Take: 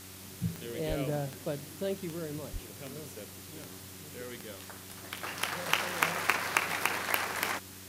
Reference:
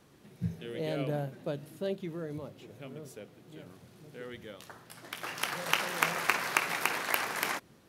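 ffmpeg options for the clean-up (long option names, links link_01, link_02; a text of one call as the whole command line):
ffmpeg -i in.wav -filter_complex "[0:a]adeclick=threshold=4,bandreject=frequency=94.8:width_type=h:width=4,bandreject=frequency=189.6:width_type=h:width=4,bandreject=frequency=284.4:width_type=h:width=4,bandreject=frequency=379.2:width_type=h:width=4,asplit=3[link_01][link_02][link_03];[link_01]afade=type=out:start_time=0.88:duration=0.02[link_04];[link_02]highpass=frequency=140:width=0.5412,highpass=frequency=140:width=1.3066,afade=type=in:start_time=0.88:duration=0.02,afade=type=out:start_time=1:duration=0.02[link_05];[link_03]afade=type=in:start_time=1:duration=0.02[link_06];[link_04][link_05][link_06]amix=inputs=3:normalize=0,asplit=3[link_07][link_08][link_09];[link_07]afade=type=out:start_time=2.52:duration=0.02[link_10];[link_08]highpass=frequency=140:width=0.5412,highpass=frequency=140:width=1.3066,afade=type=in:start_time=2.52:duration=0.02,afade=type=out:start_time=2.64:duration=0.02[link_11];[link_09]afade=type=in:start_time=2.64:duration=0.02[link_12];[link_10][link_11][link_12]amix=inputs=3:normalize=0,afwtdn=0.004" out.wav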